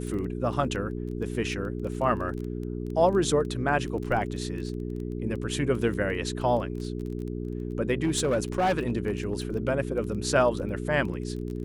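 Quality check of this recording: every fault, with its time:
surface crackle 15 per second −34 dBFS
mains hum 60 Hz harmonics 7 −33 dBFS
0:08.03–0:09.33: clipping −20 dBFS

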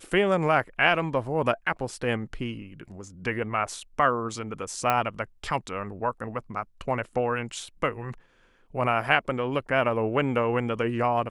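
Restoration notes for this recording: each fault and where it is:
0:04.90: click −10 dBFS

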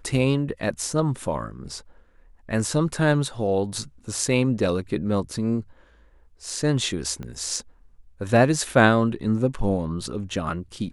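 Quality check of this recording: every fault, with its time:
0:07.23: click −23 dBFS

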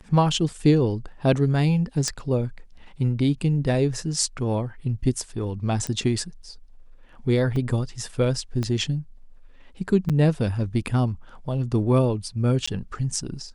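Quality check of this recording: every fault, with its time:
0:02.08: click −13 dBFS
0:05.87: click −14 dBFS
0:07.56: drop-out 2.6 ms
0:08.63: click −16 dBFS
0:10.09–0:10.10: drop-out 7.2 ms
0:12.66–0:12.68: drop-out 15 ms

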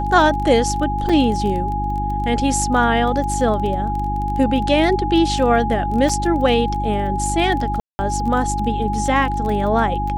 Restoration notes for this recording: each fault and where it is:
surface crackle 18 per second −25 dBFS
mains hum 50 Hz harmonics 7 −24 dBFS
whistle 830 Hz −22 dBFS
0:01.09: drop-out 5 ms
0:06.09: drop-out 3.9 ms
0:07.80–0:07.99: drop-out 190 ms

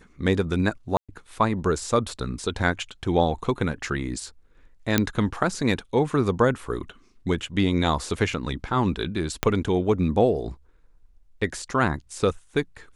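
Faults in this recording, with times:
0:00.97–0:01.09: drop-out 116 ms
0:04.98: click −4 dBFS
0:09.43: click −5 dBFS

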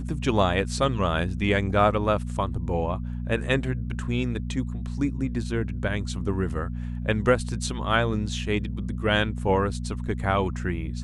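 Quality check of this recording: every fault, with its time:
mains hum 60 Hz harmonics 4 −31 dBFS

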